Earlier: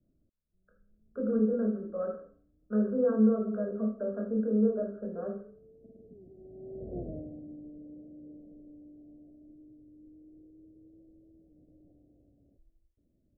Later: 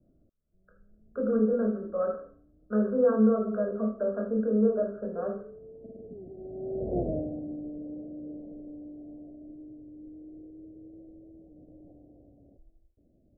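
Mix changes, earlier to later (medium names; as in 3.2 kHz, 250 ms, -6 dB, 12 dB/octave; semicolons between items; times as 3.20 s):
background +6.5 dB; master: add peaking EQ 1 kHz +8.5 dB 2 oct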